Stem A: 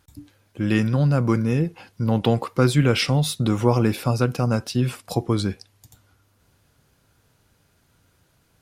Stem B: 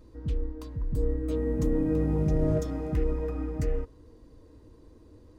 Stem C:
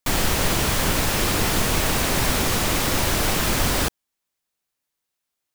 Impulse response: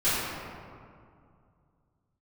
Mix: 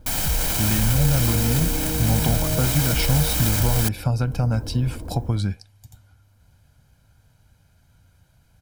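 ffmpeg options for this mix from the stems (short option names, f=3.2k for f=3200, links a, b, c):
-filter_complex "[0:a]lowshelf=f=130:g=10.5,acompressor=threshold=-17dB:ratio=6,volume=-2.5dB[a];[1:a]lowpass=1.1k,volume=3dB[b];[2:a]crystalizer=i=1.5:c=0,volume=-8dB[c];[b][c]amix=inputs=2:normalize=0,dynaudnorm=f=170:g=5:m=16dB,alimiter=limit=-15dB:level=0:latency=1:release=32,volume=0dB[d];[a][d]amix=inputs=2:normalize=0,aecho=1:1:1.3:0.52"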